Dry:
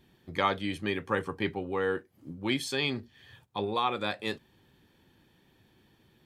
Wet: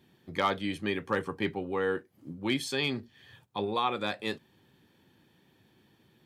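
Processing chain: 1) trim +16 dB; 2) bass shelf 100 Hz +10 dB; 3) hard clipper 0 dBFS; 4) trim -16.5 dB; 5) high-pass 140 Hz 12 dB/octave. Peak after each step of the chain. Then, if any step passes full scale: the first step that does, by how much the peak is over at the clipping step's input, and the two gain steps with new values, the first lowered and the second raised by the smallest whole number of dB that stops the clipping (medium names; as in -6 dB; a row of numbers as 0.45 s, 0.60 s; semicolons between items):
+4.5 dBFS, +4.5 dBFS, 0.0 dBFS, -16.5 dBFS, -15.5 dBFS; step 1, 4.5 dB; step 1 +11 dB, step 4 -11.5 dB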